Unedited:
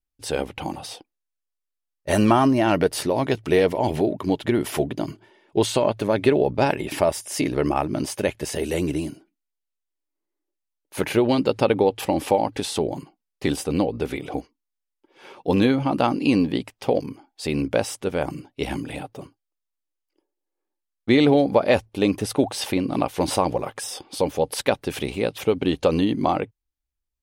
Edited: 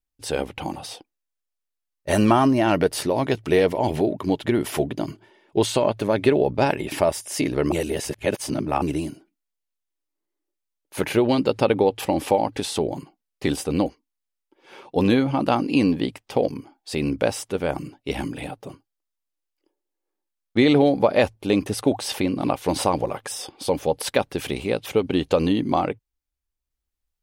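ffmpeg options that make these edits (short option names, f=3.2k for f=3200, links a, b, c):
-filter_complex "[0:a]asplit=4[a][b][c][d];[a]atrim=end=7.722[e];[b]atrim=start=7.718:end=8.822,asetpts=PTS-STARTPTS,areverse[f];[c]atrim=start=8.818:end=13.862[g];[d]atrim=start=14.378[h];[e][f]acrossfade=d=0.004:c1=hsin:c2=hsin[i];[i][g]acrossfade=d=0.004:c1=hsin:c2=hsin[j];[j][h]acrossfade=d=0.004:c1=hsin:c2=hsin"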